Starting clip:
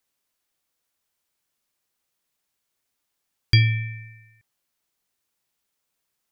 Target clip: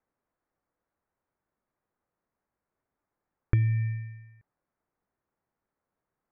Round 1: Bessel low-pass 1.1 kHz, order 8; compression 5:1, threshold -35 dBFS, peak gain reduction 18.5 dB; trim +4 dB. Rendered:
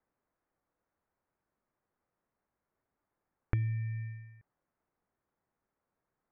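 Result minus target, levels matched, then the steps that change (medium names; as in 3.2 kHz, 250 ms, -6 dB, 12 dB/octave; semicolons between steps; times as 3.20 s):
compression: peak gain reduction +7.5 dB
change: compression 5:1, threshold -25.5 dBFS, peak gain reduction 11 dB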